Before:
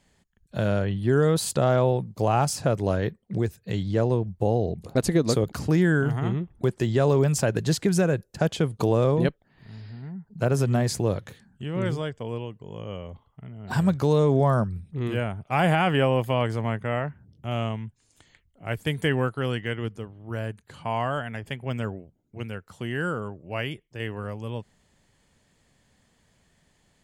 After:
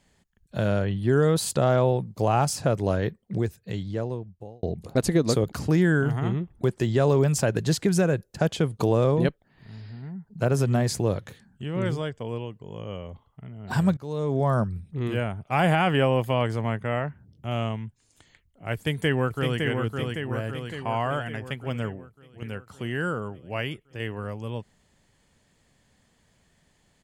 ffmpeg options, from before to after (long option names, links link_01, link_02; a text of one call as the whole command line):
ffmpeg -i in.wav -filter_complex "[0:a]asplit=2[link_01][link_02];[link_02]afade=type=in:start_time=18.74:duration=0.01,afade=type=out:start_time=19.62:duration=0.01,aecho=0:1:560|1120|1680|2240|2800|3360|3920|4480|5040:0.630957|0.378574|0.227145|0.136287|0.0817721|0.0490632|0.0294379|0.0176628|0.0105977[link_03];[link_01][link_03]amix=inputs=2:normalize=0,asplit=4[link_04][link_05][link_06][link_07];[link_04]atrim=end=4.63,asetpts=PTS-STARTPTS,afade=type=out:start_time=3.33:duration=1.3[link_08];[link_05]atrim=start=4.63:end=13.97,asetpts=PTS-STARTPTS,afade=type=in:duration=0.004:curve=hsin,afade=type=out:start_time=9.336:duration=0.004:curve=hsin:silence=0.0749894[link_09];[link_06]atrim=start=13.97:end=22.42,asetpts=PTS-STARTPTS,afade=type=in:duration=0.66:silence=0.0749894,afade=type=out:start_time=7.83:duration=0.62:silence=0.354813[link_10];[link_07]atrim=start=22.42,asetpts=PTS-STARTPTS,afade=type=in:duration=0.004:curve=hsin:silence=0.354813[link_11];[link_08][link_09][link_10][link_11]concat=n=4:v=0:a=1" out.wav